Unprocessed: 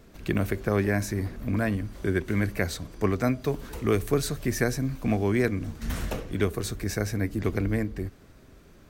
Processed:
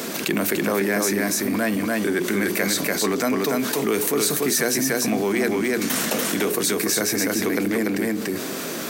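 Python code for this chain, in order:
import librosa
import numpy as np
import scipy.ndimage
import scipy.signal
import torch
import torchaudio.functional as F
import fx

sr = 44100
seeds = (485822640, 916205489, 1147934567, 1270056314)

p1 = fx.hum_notches(x, sr, base_hz=60, count=7)
p2 = np.clip(p1, -10.0 ** (-26.0 / 20.0), 10.0 ** (-26.0 / 20.0))
p3 = p1 + (p2 * librosa.db_to_amplitude(-7.0))
p4 = scipy.signal.sosfilt(scipy.signal.butter(4, 200.0, 'highpass', fs=sr, output='sos'), p3)
p5 = fx.high_shelf(p4, sr, hz=4100.0, db=10.5)
p6 = p5 + fx.echo_single(p5, sr, ms=290, db=-3.5, dry=0)
p7 = fx.env_flatten(p6, sr, amount_pct=70)
y = p7 * librosa.db_to_amplitude(-1.0)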